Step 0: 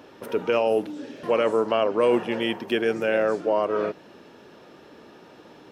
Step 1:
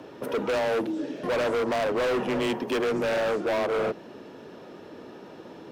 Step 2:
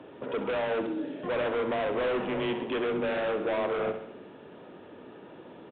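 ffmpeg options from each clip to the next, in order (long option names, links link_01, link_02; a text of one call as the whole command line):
ffmpeg -i in.wav -af "afreqshift=20,tiltshelf=frequency=740:gain=3.5,asoftclip=type=hard:threshold=-26.5dB,volume=3dB" out.wav
ffmpeg -i in.wav -af "aecho=1:1:66|132|198|264|330|396:0.335|0.184|0.101|0.0557|0.0307|0.0169,aresample=8000,aresample=44100,volume=-4dB" out.wav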